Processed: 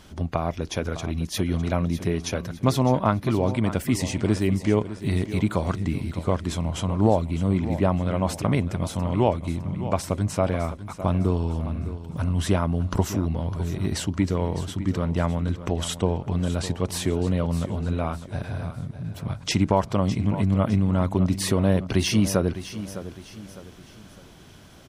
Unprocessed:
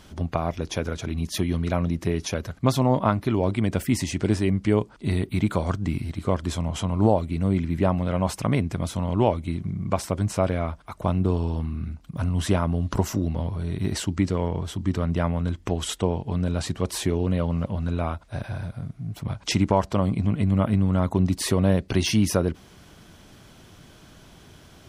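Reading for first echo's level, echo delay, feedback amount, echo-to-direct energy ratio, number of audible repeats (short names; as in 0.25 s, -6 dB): -13.0 dB, 0.607 s, 39%, -12.5 dB, 3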